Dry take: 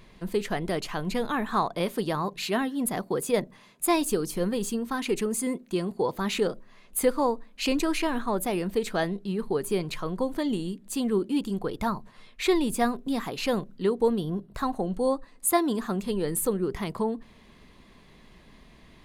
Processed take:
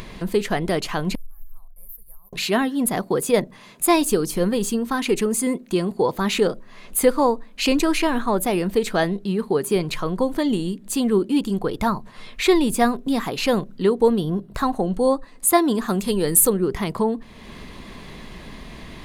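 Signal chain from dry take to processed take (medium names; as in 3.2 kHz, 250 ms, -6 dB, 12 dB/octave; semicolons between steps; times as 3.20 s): 1.15–2.33 s: inverse Chebyshev band-stop 130–6900 Hz, stop band 50 dB; in parallel at +1 dB: upward compressor, threshold -28 dBFS; 9.24–9.76 s: on the sum: high-pass 56 Hz; 15.88–16.50 s: treble shelf 4.5 kHz +9 dB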